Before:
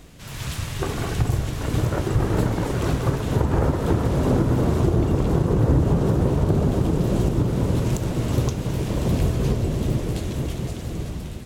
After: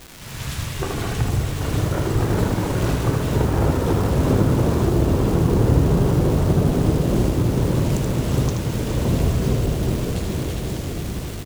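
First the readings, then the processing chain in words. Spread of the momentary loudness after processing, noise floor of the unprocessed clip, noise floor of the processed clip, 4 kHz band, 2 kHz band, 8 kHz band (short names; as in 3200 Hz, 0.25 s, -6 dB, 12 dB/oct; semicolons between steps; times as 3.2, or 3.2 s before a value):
9 LU, -33 dBFS, -30 dBFS, +3.5 dB, +3.0 dB, +4.0 dB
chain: crackle 510/s -28 dBFS; echo 78 ms -5 dB; lo-fi delay 0.412 s, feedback 80%, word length 6-bit, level -10 dB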